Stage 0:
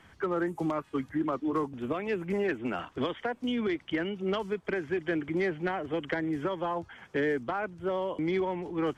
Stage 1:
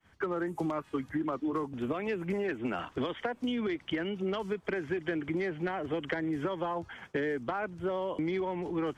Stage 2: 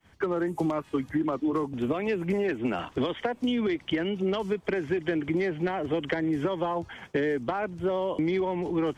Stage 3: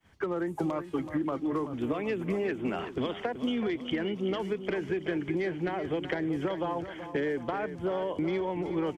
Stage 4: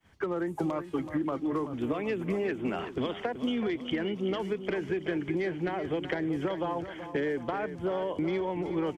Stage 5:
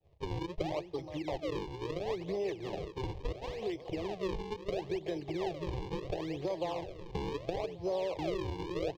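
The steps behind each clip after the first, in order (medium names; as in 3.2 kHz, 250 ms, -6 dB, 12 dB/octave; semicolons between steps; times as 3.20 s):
expander -48 dBFS; compression, threshold -32 dBFS, peak gain reduction 7.5 dB; trim +3 dB
peaking EQ 1.4 kHz -4.5 dB 0.84 oct; trim +5.5 dB
feedback delay 378 ms, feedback 51%, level -11 dB; trim -3.5 dB
no audible change
decimation with a swept rate 39×, swing 160% 0.73 Hz; distance through air 220 m; static phaser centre 590 Hz, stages 4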